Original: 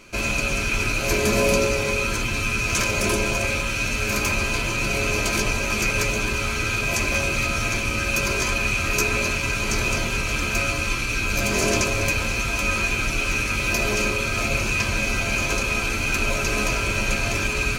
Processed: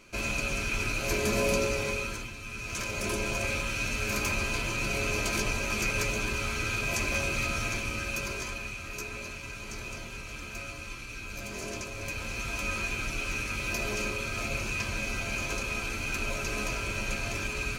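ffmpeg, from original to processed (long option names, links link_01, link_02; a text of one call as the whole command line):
ffmpeg -i in.wav -af "volume=11dB,afade=type=out:start_time=1.86:duration=0.51:silence=0.281838,afade=type=in:start_time=2.37:duration=1.13:silence=0.266073,afade=type=out:start_time=7.52:duration=1.25:silence=0.334965,afade=type=in:start_time=11.92:duration=0.6:silence=0.446684" out.wav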